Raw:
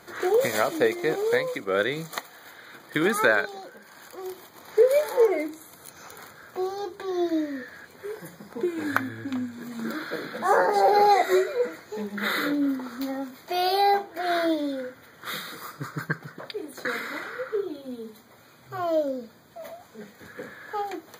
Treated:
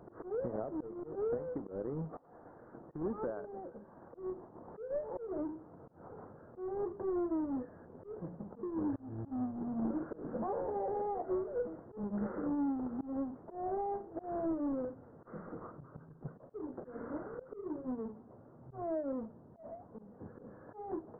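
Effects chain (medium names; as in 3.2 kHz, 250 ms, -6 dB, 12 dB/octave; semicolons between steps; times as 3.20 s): square wave that keeps the level; compression 12:1, threshold -26 dBFS, peak gain reduction 15 dB; slow attack 166 ms; Gaussian low-pass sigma 9.6 samples; trim -4.5 dB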